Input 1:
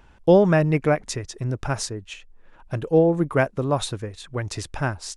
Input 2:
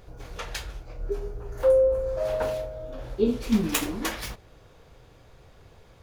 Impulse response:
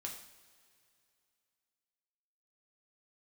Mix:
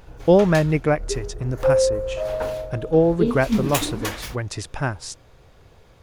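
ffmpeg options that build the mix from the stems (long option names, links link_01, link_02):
-filter_complex "[0:a]volume=0.5dB[link_01];[1:a]volume=1.5dB[link_02];[link_01][link_02]amix=inputs=2:normalize=0"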